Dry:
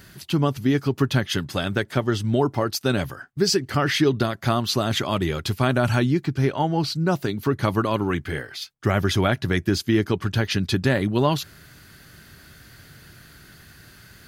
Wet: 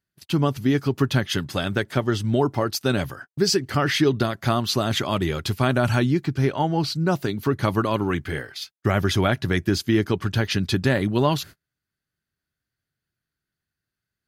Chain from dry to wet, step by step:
noise gate −38 dBFS, range −38 dB

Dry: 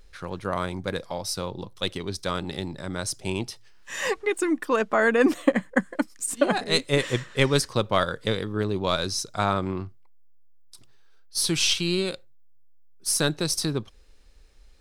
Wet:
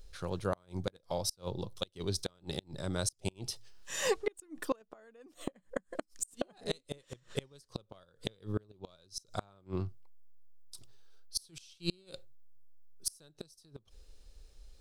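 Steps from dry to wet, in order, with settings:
graphic EQ with 10 bands 250 Hz −6 dB, 1,000 Hz −5 dB, 2,000 Hz −9 dB
gate with flip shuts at −19 dBFS, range −33 dB

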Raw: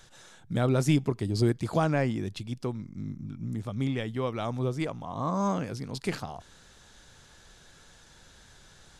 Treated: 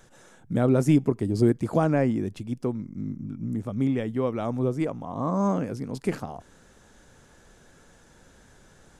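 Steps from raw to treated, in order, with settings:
octave-band graphic EQ 250/500/4,000 Hz +6/+4/−9 dB

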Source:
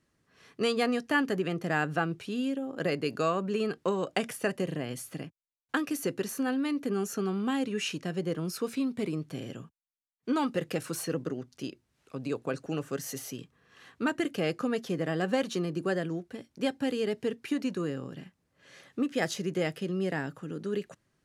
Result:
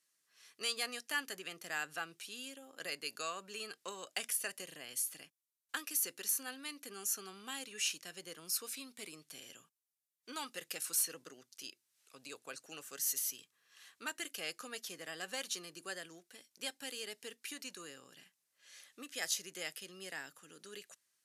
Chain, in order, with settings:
first difference
hard clipping −28.5 dBFS, distortion −27 dB
level +5 dB
MP3 160 kbit/s 32,000 Hz

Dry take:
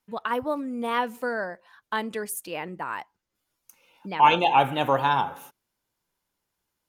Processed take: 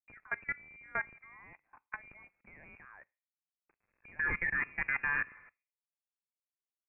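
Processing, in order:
loose part that buzzes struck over −44 dBFS, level −25 dBFS
in parallel at +1 dB: downward compressor 4 to 1, threshold −39 dBFS, peak gain reduction 22 dB
on the sum: bit-depth reduction 8 bits, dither none
output level in coarse steps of 23 dB
on a send at −19 dB: convolution reverb RT60 0.45 s, pre-delay 6 ms
on the sum: voice inversion scrambler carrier 2,600 Hz
level −8.5 dB

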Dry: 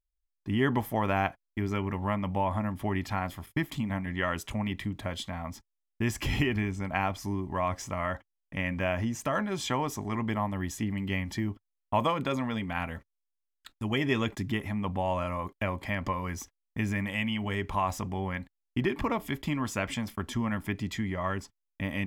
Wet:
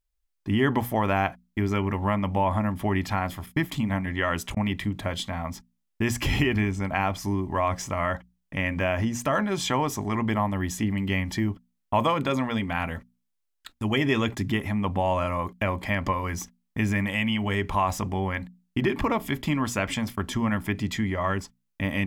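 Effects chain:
mains-hum notches 60/120/180/240 Hz
in parallel at −1 dB: brickwall limiter −20.5 dBFS, peak gain reduction 8 dB
0:03.78–0:04.57: on the sum: volume swells 775 ms

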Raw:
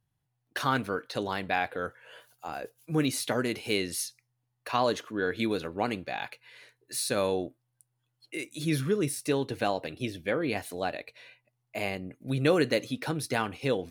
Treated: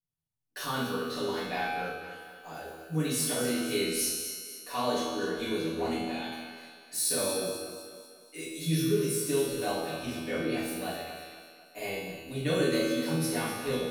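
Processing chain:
noise gate −53 dBFS, range −11 dB
bass and treble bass −1 dB, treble +10 dB
tuned comb filter 81 Hz, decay 1.5 s, harmonics all, mix 90%
feedback echo with a high-pass in the loop 246 ms, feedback 50%, high-pass 170 Hz, level −10.5 dB
convolution reverb RT60 0.70 s, pre-delay 4 ms, DRR −8.5 dB
level +1.5 dB

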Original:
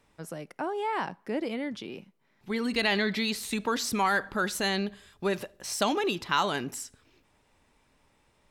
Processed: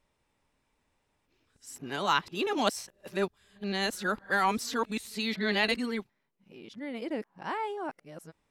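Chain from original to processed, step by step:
played backwards from end to start
expander for the loud parts 1.5 to 1, over −41 dBFS

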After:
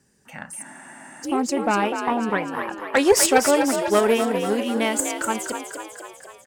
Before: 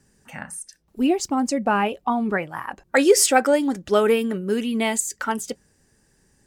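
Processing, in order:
harmonic generator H 4 −16 dB, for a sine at −2.5 dBFS
high-pass filter 120 Hz 6 dB per octave
on a send: echo with shifted repeats 248 ms, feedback 61%, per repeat +50 Hz, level −7.5 dB
on the sum: frozen spectrum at 0:00.65, 0.60 s
level −1 dB

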